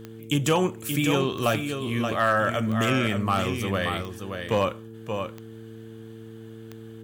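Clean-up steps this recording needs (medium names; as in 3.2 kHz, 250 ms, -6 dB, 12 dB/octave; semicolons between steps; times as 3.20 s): clip repair -13 dBFS; de-click; de-hum 112 Hz, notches 4; inverse comb 577 ms -7 dB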